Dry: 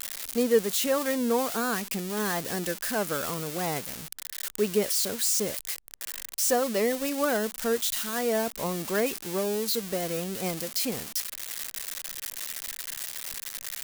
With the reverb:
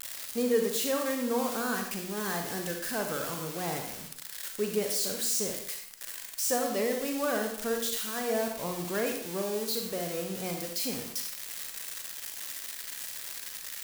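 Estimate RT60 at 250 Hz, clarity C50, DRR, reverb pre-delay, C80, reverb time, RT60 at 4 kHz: 0.60 s, 5.0 dB, 3.0 dB, 35 ms, 8.0 dB, 0.60 s, 0.60 s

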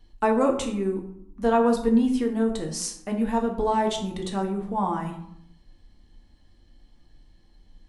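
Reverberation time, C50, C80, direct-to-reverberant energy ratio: 0.70 s, 8.5 dB, 11.0 dB, 1.5 dB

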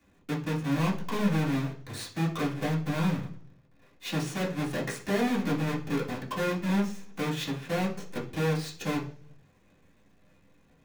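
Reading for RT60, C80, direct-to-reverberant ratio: 0.45 s, 15.5 dB, -6.5 dB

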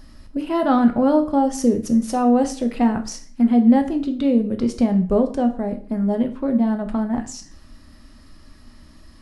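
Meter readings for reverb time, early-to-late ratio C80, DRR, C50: 0.45 s, 17.0 dB, 5.5 dB, 12.5 dB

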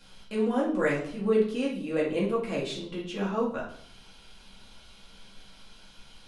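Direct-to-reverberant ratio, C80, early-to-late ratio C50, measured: -6.0 dB, 10.5 dB, 5.5 dB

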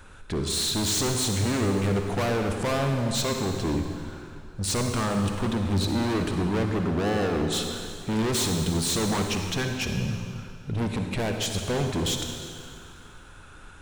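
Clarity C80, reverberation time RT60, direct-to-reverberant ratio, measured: 5.0 dB, 2.3 s, 4.0 dB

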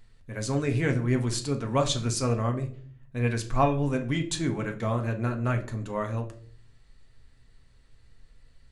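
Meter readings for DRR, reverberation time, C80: 3.5 dB, not exponential, 18.0 dB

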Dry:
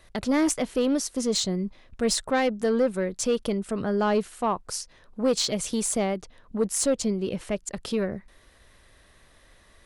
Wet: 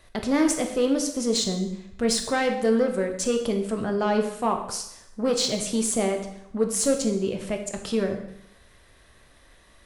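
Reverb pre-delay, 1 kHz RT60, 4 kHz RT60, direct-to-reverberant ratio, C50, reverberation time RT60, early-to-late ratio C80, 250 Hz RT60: 6 ms, 0.80 s, 0.75 s, 4.0 dB, 8.0 dB, 0.75 s, 10.5 dB, 0.75 s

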